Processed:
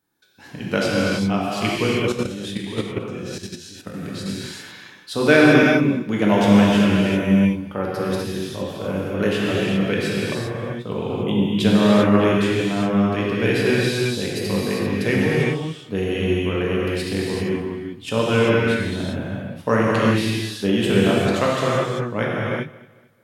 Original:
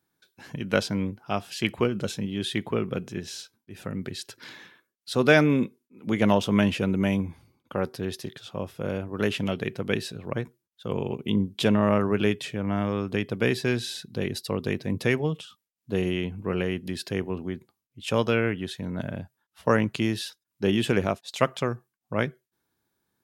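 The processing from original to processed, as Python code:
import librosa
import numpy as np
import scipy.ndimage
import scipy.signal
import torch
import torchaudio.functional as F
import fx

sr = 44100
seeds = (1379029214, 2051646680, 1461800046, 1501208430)

y = fx.rev_gated(x, sr, seeds[0], gate_ms=420, shape='flat', drr_db=-6.0)
y = fx.level_steps(y, sr, step_db=10, at=(2.12, 4.26))
y = fx.echo_feedback(y, sr, ms=222, feedback_pct=37, wet_db=-20.0)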